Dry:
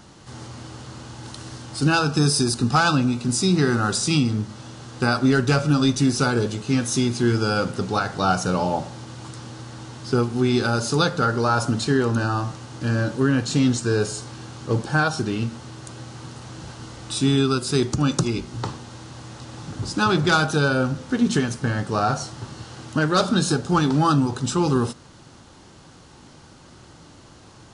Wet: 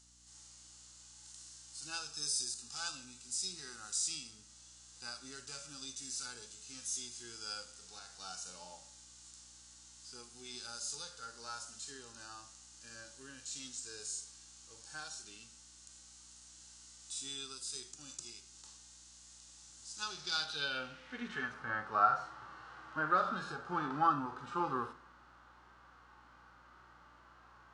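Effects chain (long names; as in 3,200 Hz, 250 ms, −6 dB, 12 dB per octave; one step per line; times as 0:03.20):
band-pass filter sweep 7,400 Hz → 1,300 Hz, 0:19.94–0:21.56
harmonic and percussive parts rebalanced percussive −16 dB
mains hum 60 Hz, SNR 27 dB
on a send: convolution reverb RT60 0.85 s, pre-delay 53 ms, DRR 19 dB
on the sum: level +1 dB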